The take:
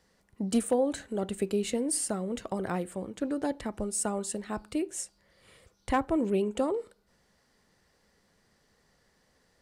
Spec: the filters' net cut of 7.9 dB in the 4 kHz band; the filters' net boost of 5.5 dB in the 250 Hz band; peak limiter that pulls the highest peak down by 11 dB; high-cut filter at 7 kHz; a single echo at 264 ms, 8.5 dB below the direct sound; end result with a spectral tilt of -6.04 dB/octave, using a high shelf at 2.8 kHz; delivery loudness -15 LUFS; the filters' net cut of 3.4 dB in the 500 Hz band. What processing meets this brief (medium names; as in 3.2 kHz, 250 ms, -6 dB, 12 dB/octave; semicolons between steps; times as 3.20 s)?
low-pass 7 kHz; peaking EQ 250 Hz +8.5 dB; peaking EQ 500 Hz -7 dB; treble shelf 2.8 kHz -4.5 dB; peaking EQ 4 kHz -6.5 dB; peak limiter -22.5 dBFS; delay 264 ms -8.5 dB; trim +17 dB